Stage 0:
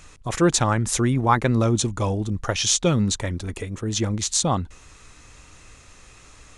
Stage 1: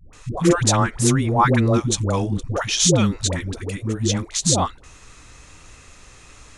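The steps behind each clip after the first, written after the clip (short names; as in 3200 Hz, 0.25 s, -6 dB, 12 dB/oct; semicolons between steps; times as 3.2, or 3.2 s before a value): dispersion highs, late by 0.132 s, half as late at 490 Hz; gain +2.5 dB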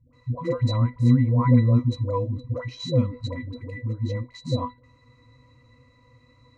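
octave resonator B, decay 0.14 s; gain +4.5 dB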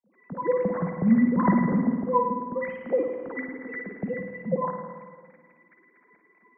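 sine-wave speech; spring tank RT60 1.7 s, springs 50/54 ms, chirp 20 ms, DRR 3.5 dB; gain -4.5 dB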